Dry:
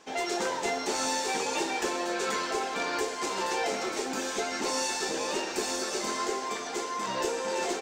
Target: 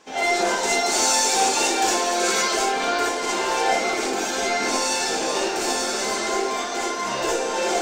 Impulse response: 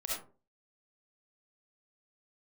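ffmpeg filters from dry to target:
-filter_complex "[0:a]asettb=1/sr,asplit=3[a][b][c];[a]atrim=end=0.514[d];[b]atrim=start=0.51:end=2.64,asetpts=PTS-STARTPTS,afade=t=in:d=0.004:c=qsin,afade=t=out:st=2.126:d=0.004:c=qsin,bass=f=250:g=-1,treble=f=4k:g=7[e];[c]atrim=start=2.636[f];[d][e]acrossfade=d=0.004:c1=hsin:c2=qsin[g];[g][f]acrossfade=d=0.004:c1=qsin:c2=hsin[h];[1:a]atrim=start_sample=2205,asetrate=48510,aresample=44100[i];[h][i]afir=irnorm=-1:irlink=0,volume=6.5dB"

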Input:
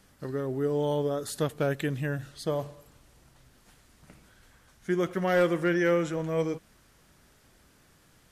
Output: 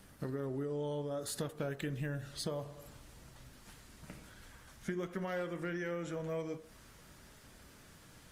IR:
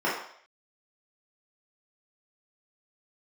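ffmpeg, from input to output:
-filter_complex "[0:a]acompressor=threshold=-39dB:ratio=6,asplit=2[a][b];[1:a]atrim=start_sample=2205,highshelf=f=2.2k:g=-6[c];[b][c]afir=irnorm=-1:irlink=0,volume=-24dB[d];[a][d]amix=inputs=2:normalize=0,volume=3dB" -ar 48000 -c:a libopus -b:a 32k

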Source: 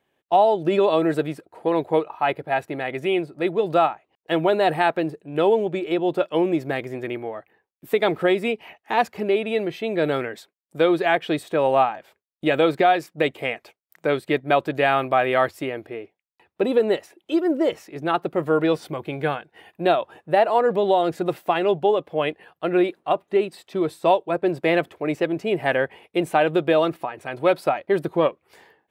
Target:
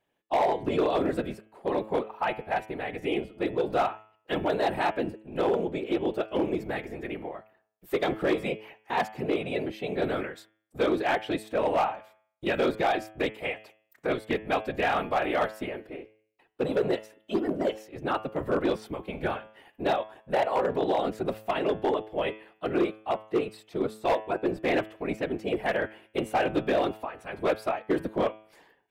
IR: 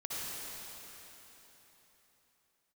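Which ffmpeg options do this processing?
-af "afftfilt=real='hypot(re,im)*cos(2*PI*random(0))':imag='hypot(re,im)*sin(2*PI*random(1))':win_size=512:overlap=0.75,volume=18.5dB,asoftclip=hard,volume=-18.5dB,bandreject=f=108.3:t=h:w=4,bandreject=f=216.6:t=h:w=4,bandreject=f=324.9:t=h:w=4,bandreject=f=433.2:t=h:w=4,bandreject=f=541.5:t=h:w=4,bandreject=f=649.8:t=h:w=4,bandreject=f=758.1:t=h:w=4,bandreject=f=866.4:t=h:w=4,bandreject=f=974.7:t=h:w=4,bandreject=f=1.083k:t=h:w=4,bandreject=f=1.1913k:t=h:w=4,bandreject=f=1.2996k:t=h:w=4,bandreject=f=1.4079k:t=h:w=4,bandreject=f=1.5162k:t=h:w=4,bandreject=f=1.6245k:t=h:w=4,bandreject=f=1.7328k:t=h:w=4,bandreject=f=1.8411k:t=h:w=4,bandreject=f=1.9494k:t=h:w=4,bandreject=f=2.0577k:t=h:w=4,bandreject=f=2.166k:t=h:w=4,bandreject=f=2.2743k:t=h:w=4,bandreject=f=2.3826k:t=h:w=4,bandreject=f=2.4909k:t=h:w=4,bandreject=f=2.5992k:t=h:w=4,bandreject=f=2.7075k:t=h:w=4,bandreject=f=2.8158k:t=h:w=4,bandreject=f=2.9241k:t=h:w=4,bandreject=f=3.0324k:t=h:w=4,bandreject=f=3.1407k:t=h:w=4,bandreject=f=3.249k:t=h:w=4,bandreject=f=3.3573k:t=h:w=4,bandreject=f=3.4656k:t=h:w=4"

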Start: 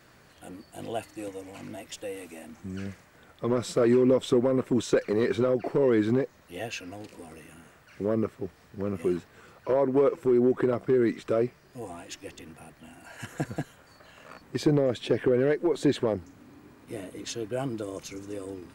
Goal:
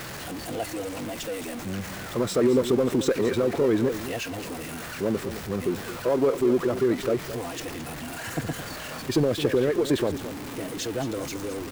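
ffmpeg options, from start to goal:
-af "aeval=exprs='val(0)+0.5*0.0282*sgn(val(0))':c=same,atempo=1.6,aecho=1:1:217:0.251"

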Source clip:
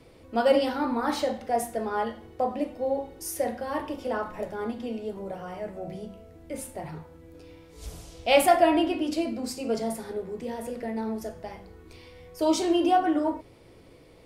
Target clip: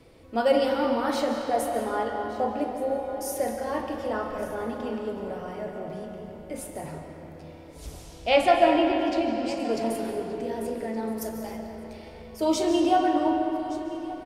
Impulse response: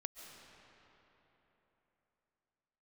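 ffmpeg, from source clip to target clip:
-filter_complex "[0:a]asettb=1/sr,asplit=3[a][b][c];[a]atrim=end=8.294[d];[b]atrim=start=8.29:end=9.6,asetpts=PTS-STARTPTS,afade=t=in:d=0.004:c=qsin,afade=t=out:st=1.306:d=0.004:c=qsin,lowpass=5.2k[e];[c]atrim=start=9.596[f];[d][e]acrossfade=d=0.004:c1=hsin:c2=qsin[g];[g][f]acrossfade=d=0.004:c1=qsin:c2=hsin,asettb=1/sr,asplit=3[h][i][j];[h]atrim=end=11.174[k];[i]atrim=start=11.17:end=11.57,asetpts=PTS-STARTPTS,afade=t=in:d=0.004:c=qsin,afade=t=out:st=0.396:d=0.004:c=qsin,aemphasis=mode=production:type=50fm[l];[j]atrim=start=11.566[m];[k][l]acrossfade=d=0.004:c1=hsin:c2=qsin[n];[n][m]acrossfade=d=0.004:c1=qsin:c2=hsin,aecho=1:1:1171:0.126[o];[1:a]atrim=start_sample=2205[p];[o][p]afir=irnorm=-1:irlink=0,volume=4dB"

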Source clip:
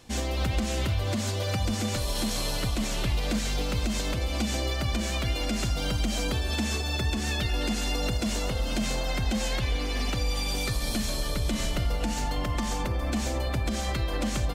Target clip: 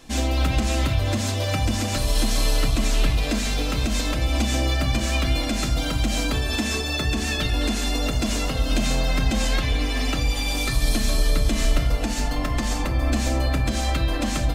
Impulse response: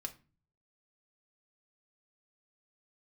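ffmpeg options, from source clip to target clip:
-filter_complex "[1:a]atrim=start_sample=2205[a];[0:a][a]afir=irnorm=-1:irlink=0,volume=7.5dB"

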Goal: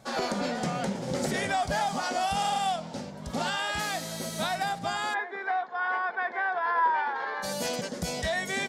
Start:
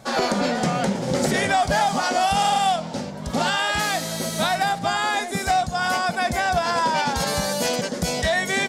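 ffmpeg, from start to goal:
-filter_complex "[0:a]asplit=3[a][b][c];[a]afade=t=out:st=5.13:d=0.02[d];[b]highpass=f=390:w=0.5412,highpass=f=390:w=1.3066,equalizer=f=390:t=q:w=4:g=4,equalizer=f=590:t=q:w=4:g=-9,equalizer=f=1k:t=q:w=4:g=7,equalizer=f=1.7k:t=q:w=4:g=8,equalizer=f=2.7k:t=q:w=4:g=-10,lowpass=f=2.8k:w=0.5412,lowpass=f=2.8k:w=1.3066,afade=t=in:st=5.13:d=0.02,afade=t=out:st=7.42:d=0.02[e];[c]afade=t=in:st=7.42:d=0.02[f];[d][e][f]amix=inputs=3:normalize=0,volume=-8dB"

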